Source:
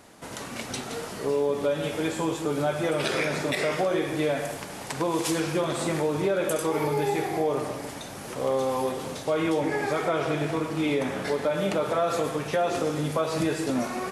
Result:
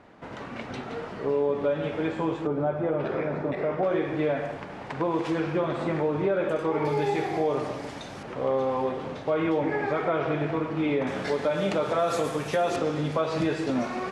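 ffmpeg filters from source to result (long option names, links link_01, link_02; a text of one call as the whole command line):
ffmpeg -i in.wav -af "asetnsamples=nb_out_samples=441:pad=0,asendcmd='2.47 lowpass f 1100;3.83 lowpass f 2200;6.85 lowpass f 4900;8.23 lowpass f 2500;11.07 lowpass f 6200;11.99 lowpass f 11000;12.76 lowpass f 4300',lowpass=2300" out.wav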